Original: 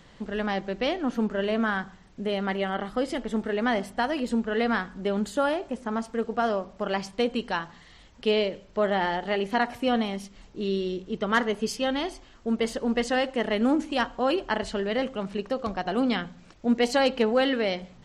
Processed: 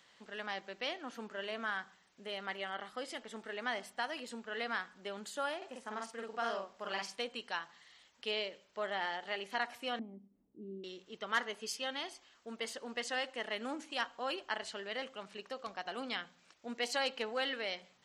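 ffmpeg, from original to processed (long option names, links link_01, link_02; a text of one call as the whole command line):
ffmpeg -i in.wav -filter_complex "[0:a]asettb=1/sr,asplit=3[link_01][link_02][link_03];[link_01]atrim=end=5.574[link_04];[link_02]atrim=start=5.57:end=7.22,asetpts=PTS-STARTPTS,afade=type=in:duration=0.004:curve=qsin,afade=type=out:start_time=1.646:duration=0.004:curve=qsin,asplit=2[link_05][link_06];[link_06]adelay=47,volume=-2dB[link_07];[link_05][link_07]amix=inputs=2:normalize=0,atrim=end_sample=72765[link_08];[link_03]atrim=start=7.216[link_09];[link_04][link_08]acrossfade=duration=0.004:curve1=hsin:curve2=qsin[link_10];[link_10][link_09]acrossfade=duration=0.004:curve1=qsin:curve2=hsin,asettb=1/sr,asplit=3[link_11][link_12][link_13];[link_11]atrim=end=9.994[link_14];[link_12]atrim=start=9.99:end=10.84,asetpts=PTS-STARTPTS,afade=type=in:duration=0.004:curve=qsin,afade=type=out:start_time=0.846:duration=0.004:curve=qsin,lowpass=frequency=270:width_type=q:width=2.4[link_15];[link_13]atrim=start=10.836[link_16];[link_14][link_15]acrossfade=duration=0.004:curve1=hsin:curve2=qsin[link_17];[link_17][link_16]acrossfade=duration=0.004:curve1=qsin:curve2=hsin,highpass=frequency=1500:poles=1,volume=-5.5dB" out.wav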